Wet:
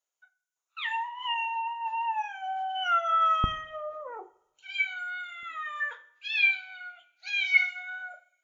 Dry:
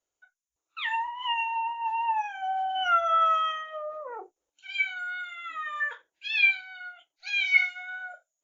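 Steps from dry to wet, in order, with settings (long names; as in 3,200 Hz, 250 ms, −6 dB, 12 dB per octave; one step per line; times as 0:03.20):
high-pass filter 720 Hz 12 dB per octave, from 0:03.44 120 Hz, from 0:05.43 330 Hz
coupled-rooms reverb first 0.61 s, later 2 s, from −24 dB, DRR 14 dB
level −1.5 dB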